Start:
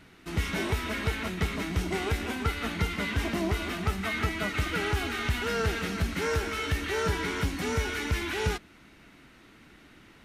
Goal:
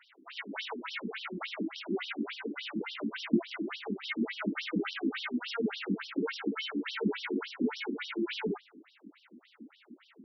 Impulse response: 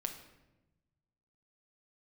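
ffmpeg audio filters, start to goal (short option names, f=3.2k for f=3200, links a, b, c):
-filter_complex "[0:a]asubboost=boost=9.5:cutoff=200,asplit=2[a][b];[1:a]atrim=start_sample=2205[c];[b][c]afir=irnorm=-1:irlink=0,volume=-12dB[d];[a][d]amix=inputs=2:normalize=0,afftfilt=real='re*between(b*sr/1024,270*pow(4200/270,0.5+0.5*sin(2*PI*3.5*pts/sr))/1.41,270*pow(4200/270,0.5+0.5*sin(2*PI*3.5*pts/sr))*1.41)':imag='im*between(b*sr/1024,270*pow(4200/270,0.5+0.5*sin(2*PI*3.5*pts/sr))/1.41,270*pow(4200/270,0.5+0.5*sin(2*PI*3.5*pts/sr))*1.41)':win_size=1024:overlap=0.75"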